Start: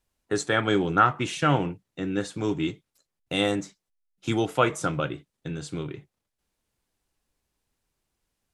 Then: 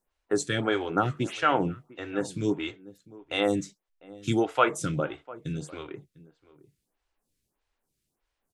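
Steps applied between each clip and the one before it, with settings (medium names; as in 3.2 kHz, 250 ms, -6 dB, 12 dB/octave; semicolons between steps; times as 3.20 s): echo from a far wall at 120 m, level -20 dB; lamp-driven phase shifter 1.6 Hz; trim +1.5 dB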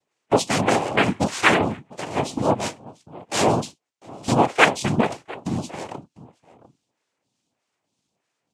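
noise-vocoded speech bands 4; trim +7 dB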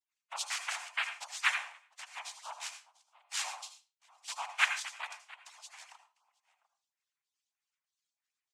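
harmonic-percussive separation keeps percussive; Bessel high-pass 1.6 kHz, order 8; on a send at -8 dB: reverberation RT60 0.30 s, pre-delay 72 ms; on the sum: trim -9 dB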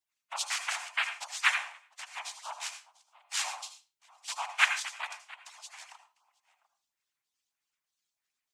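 band-stop 500 Hz, Q 12; trim +3.5 dB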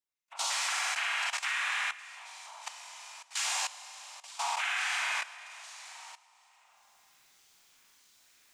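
reverse; upward compressor, threshold -53 dBFS; reverse; Schroeder reverb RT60 1.8 s, combs from 33 ms, DRR -6 dB; level held to a coarse grid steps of 16 dB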